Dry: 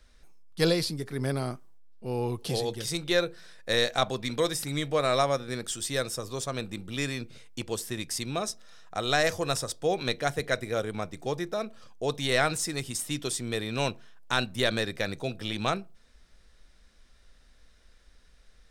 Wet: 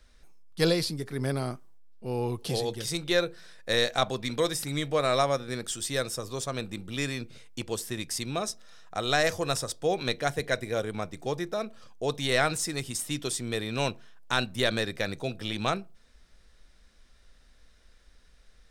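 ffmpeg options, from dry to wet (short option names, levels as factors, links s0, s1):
-filter_complex "[0:a]asettb=1/sr,asplit=3[s0][s1][s2];[s0]atrim=end=10.344[s3];[s1]atrim=start=10.34:end=10.82,asetpts=PTS-STARTPTS,afade=t=in:d=0.004:c=qsin,afade=t=out:st=0.476:d=0.004:c=qsin,bandreject=f=1300:w=12[s4];[s2]atrim=start=10.816[s5];[s3][s4]acrossfade=d=0.004:c1=hsin:c2=qsin[s6];[s6][s5]acrossfade=d=0.004:c1=qsin:c2=hsin"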